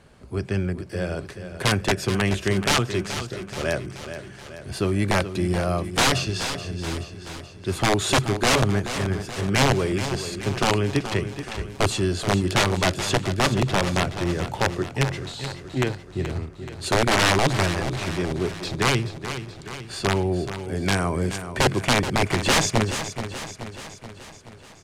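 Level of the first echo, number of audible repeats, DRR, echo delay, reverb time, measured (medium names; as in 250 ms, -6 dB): -10.5 dB, 6, no reverb, 428 ms, no reverb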